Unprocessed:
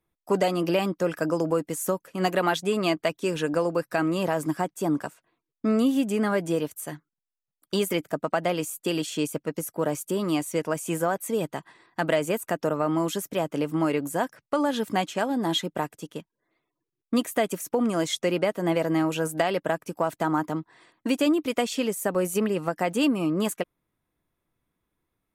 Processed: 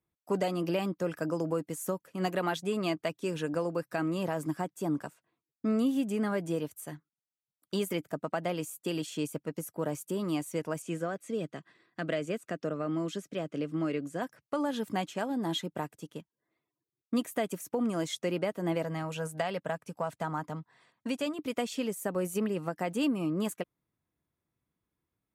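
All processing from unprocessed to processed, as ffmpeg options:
-filter_complex "[0:a]asettb=1/sr,asplit=3[s0][s1][s2];[s0]atrim=end=10.824[s3];[s1]atrim=start=10.82:end=14.22,asetpts=PTS-STARTPTS,afade=t=in:d=0.004:c=qsin,afade=t=out:st=3.396:d=0.004:c=qsin,highpass=130,lowpass=6200,equalizer=f=890:w=3.9:g=-13.5[s4];[s2]atrim=start=14.216[s5];[s3][s4]acrossfade=d=0.004:c1=hsin:c2=qsin[s6];[s6][s5]acrossfade=d=0.004:c1=qsin:c2=hsin,asettb=1/sr,asplit=3[s7][s8][s9];[s7]atrim=end=18.844[s10];[s8]atrim=start=18.84:end=21.39,asetpts=PTS-STARTPTS,afade=t=in:d=0.004:c=qsin,afade=t=out:st=2.546:d=0.004:c=qsin,lowpass=11000,equalizer=f=330:w=4.9:g=-14.5[s11];[s9]atrim=start=21.386[s12];[s10][s11]acrossfade=d=0.004:c1=hsin:c2=qsin[s13];[s13][s12]acrossfade=d=0.004:c1=qsin:c2=hsin,highpass=74,lowshelf=f=180:g=7.5,volume=0.398"

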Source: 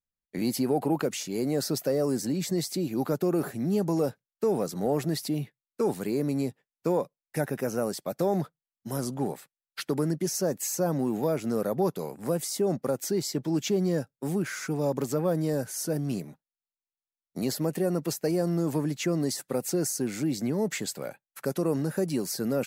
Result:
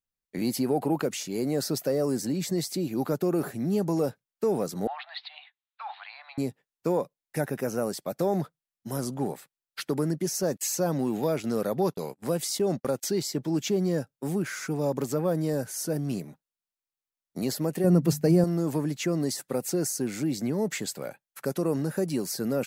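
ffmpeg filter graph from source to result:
-filter_complex "[0:a]asettb=1/sr,asplit=3[s0][s1][s2];[s0]atrim=end=4.874[s3];[s1]atrim=start=4.87:end=6.38,asetpts=PTS-STARTPTS,afade=t=in:d=0.004:c=qsin,afade=t=out:st=1.506:d=0.004:c=qsin,asuperpass=centerf=1700:order=20:qfactor=0.52,aemphasis=mode=production:type=75kf[s4];[s2]atrim=start=6.376[s5];[s3][s4]acrossfade=d=0.004:c1=hsin:c2=qsin[s6];[s6][s5]acrossfade=d=0.004:c1=qsin:c2=hsin,asettb=1/sr,asplit=3[s7][s8][s9];[s7]atrim=end=10.434[s10];[s8]atrim=start=10.43:end=13.23,asetpts=PTS-STARTPTS,afade=t=in:d=0.004:c=qsin,afade=t=out:st=2.796:d=0.004:c=qsin,agate=range=0.0178:threshold=0.0112:ratio=16:release=100:detection=peak,equalizer=f=3500:w=0.94:g=6,acompressor=mode=upward:threshold=0.0224:ratio=2.5:attack=3.2:release=140:knee=2.83:detection=peak[s11];[s9]atrim=start=13.226[s12];[s10][s11]acrossfade=d=0.004:c1=hsin:c2=qsin[s13];[s13][s12]acrossfade=d=0.004:c1=qsin:c2=hsin,asettb=1/sr,asplit=3[s14][s15][s16];[s14]atrim=end=17.844[s17];[s15]atrim=start=17.84:end=18.44,asetpts=PTS-STARTPTS,afade=t=in:d=0.004:c=qsin,afade=t=out:st=0.596:d=0.004:c=qsin,equalizer=f=120:t=o:w=2.3:g=13.5,bandreject=f=50:t=h:w=6,bandreject=f=100:t=h:w=6,bandreject=f=150:t=h:w=6,bandreject=f=200:t=h:w=6,bandreject=f=250:t=h:w=6[s18];[s16]atrim=start=18.436[s19];[s17][s18]acrossfade=d=0.004:c1=hsin:c2=qsin[s20];[s20][s19]acrossfade=d=0.004:c1=qsin:c2=hsin"

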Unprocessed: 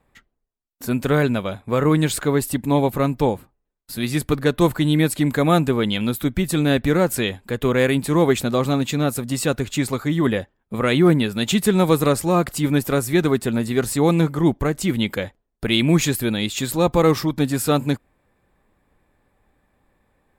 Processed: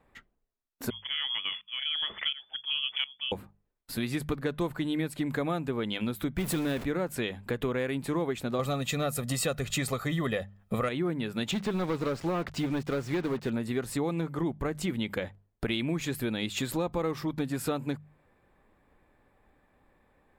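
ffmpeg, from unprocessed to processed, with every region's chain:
-filter_complex "[0:a]asettb=1/sr,asplit=3[s0][s1][s2];[s0]atrim=end=0.904[s3];[s1]atrim=start=0.9:end=3.32,asetpts=PTS-STARTPTS,afade=t=in:d=0.004:c=qsin,afade=t=out:st=2.416:d=0.004:c=qsin,lowpass=f=3000:t=q:w=0.5098,lowpass=f=3000:t=q:w=0.6013,lowpass=f=3000:t=q:w=0.9,lowpass=f=3000:t=q:w=2.563,afreqshift=-3500,aeval=exprs='val(0)*pow(10,-19*if(lt(mod(-1.4*n/s,1),2*abs(-1.4)/1000),1-mod(-1.4*n/s,1)/(2*abs(-1.4)/1000),(mod(-1.4*n/s,1)-2*abs(-1.4)/1000)/(1-2*abs(-1.4)/1000))/20)':c=same[s4];[s2]atrim=start=3.316[s5];[s3][s4]acrossfade=d=0.004:c1=hsin:c2=qsin[s6];[s6][s5]acrossfade=d=0.004:c1=qsin:c2=hsin,asettb=1/sr,asplit=3[s7][s8][s9];[s7]atrim=end=6.384[s10];[s8]atrim=start=6.38:end=6.84,asetpts=PTS-STARTPTS,afade=t=in:d=0.004:c=qsin,afade=t=out:st=0.456:d=0.004:c=qsin,aeval=exprs='val(0)+0.5*0.0841*sgn(val(0))':c=same,highshelf=f=8900:g=7.5[s11];[s9]atrim=start=6.836[s12];[s10][s11]acrossfade=d=0.004:c1=hsin:c2=qsin[s13];[s13][s12]acrossfade=d=0.004:c1=qsin:c2=hsin,asettb=1/sr,asplit=3[s14][s15][s16];[s14]atrim=end=8.594[s17];[s15]atrim=start=8.59:end=10.89,asetpts=PTS-STARTPTS,afade=t=in:d=0.004:c=qsin,afade=t=out:st=2.296:d=0.004:c=qsin,highshelf=f=3800:g=7.5,aecho=1:1:1.6:0.52,atrim=end_sample=101430,acontrast=33[s18];[s16]atrim=start=10.886[s19];[s17][s18]acrossfade=d=0.004:c1=hsin:c2=qsin[s20];[s20][s19]acrossfade=d=0.004:c1=qsin:c2=hsin,asettb=1/sr,asplit=3[s21][s22][s23];[s21]atrim=end=11.514[s24];[s22]atrim=start=11.51:end=13.5,asetpts=PTS-STARTPTS,afade=t=in:d=0.004:c=qsin,afade=t=out:st=1.986:d=0.004:c=qsin,lowpass=f=6100:w=0.5412,lowpass=f=6100:w=1.3066,asoftclip=type=hard:threshold=0.178,acrusher=bits=5:mix=0:aa=0.5[s25];[s23]atrim=start=13.496[s26];[s24][s25]acrossfade=d=0.004:c1=hsin:c2=qsin[s27];[s27][s26]acrossfade=d=0.004:c1=qsin:c2=hsin,bass=f=250:g=-2,treble=f=4000:g=-7,bandreject=f=50:t=h:w=6,bandreject=f=100:t=h:w=6,bandreject=f=150:t=h:w=6,bandreject=f=200:t=h:w=6,acompressor=threshold=0.0398:ratio=6"

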